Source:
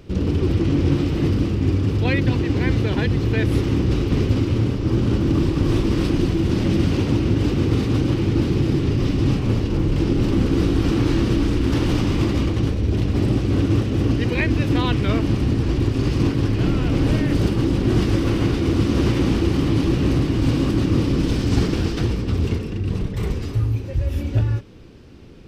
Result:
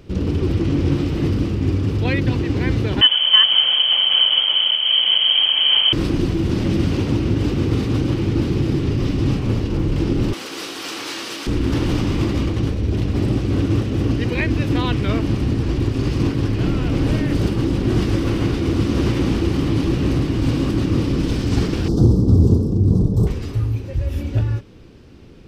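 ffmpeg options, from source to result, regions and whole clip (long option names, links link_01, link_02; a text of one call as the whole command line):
ffmpeg -i in.wav -filter_complex "[0:a]asettb=1/sr,asplit=3[link_01][link_02][link_03];[link_01]atrim=end=3.014[link_04];[link_02]atrim=start=3.01:end=5.93,asetpts=PTS-STARTPTS,afade=type=in:duration=0.004:curve=qsin,afade=type=out:start_time=2.916:duration=0.004:curve=qsin,highpass=frequency=480:width_type=q:width=5.5,acontrast=33,lowpass=frequency=3000:width_type=q:width=0.5098,lowpass=frequency=3000:width_type=q:width=0.6013,lowpass=frequency=3000:width_type=q:width=0.9,lowpass=frequency=3000:width_type=q:width=2.563,afreqshift=-3500[link_05];[link_03]atrim=start=5.926[link_06];[link_04][link_05]acrossfade=duration=0.004:curve1=hsin:curve2=qsin[link_07];[link_07][link_06]acrossfade=duration=0.004:curve1=qsin:curve2=hsin,asettb=1/sr,asplit=3[link_08][link_09][link_10];[link_08]atrim=end=10.334[link_11];[link_09]atrim=start=10.33:end=11.47,asetpts=PTS-STARTPTS,afade=type=in:duration=0.004:curve=qsin,afade=type=out:start_time=1.136:duration=0.004:curve=qsin,highpass=710,highshelf=frequency=3200:gain=10[link_12];[link_10]atrim=start=11.466[link_13];[link_11][link_12]acrossfade=duration=0.004:curve1=hsin:curve2=qsin[link_14];[link_14][link_13]acrossfade=duration=0.004:curve1=qsin:curve2=hsin,asettb=1/sr,asplit=3[link_15][link_16][link_17];[link_15]atrim=end=21.884[link_18];[link_16]atrim=start=21.88:end=23.27,asetpts=PTS-STARTPTS,afade=type=in:duration=0.004:curve=qsin,afade=type=out:start_time=1.386:duration=0.004:curve=qsin,asuperstop=centerf=2200:order=4:qfactor=0.54,equalizer=frequency=160:width=0.36:gain=9.5,asplit=2[link_19][link_20];[link_20]adelay=43,volume=-12dB[link_21];[link_19][link_21]amix=inputs=2:normalize=0,atrim=end_sample=61299[link_22];[link_17]atrim=start=23.266[link_23];[link_18][link_22]acrossfade=duration=0.004:curve1=hsin:curve2=qsin[link_24];[link_24][link_23]acrossfade=duration=0.004:curve1=qsin:curve2=hsin" out.wav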